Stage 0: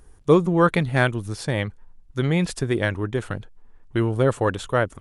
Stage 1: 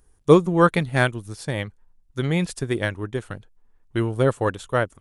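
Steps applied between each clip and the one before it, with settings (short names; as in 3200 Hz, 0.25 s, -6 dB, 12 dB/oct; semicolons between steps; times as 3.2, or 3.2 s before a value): high shelf 6000 Hz +7.5 dB; upward expander 1.5:1, over -36 dBFS; gain +3 dB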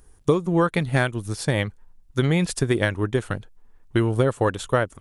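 compressor 16:1, threshold -22 dBFS, peak gain reduction 16 dB; gain +6.5 dB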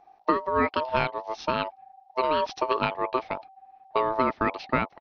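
downsampling 11025 Hz; ring modulator 770 Hz; gain -1.5 dB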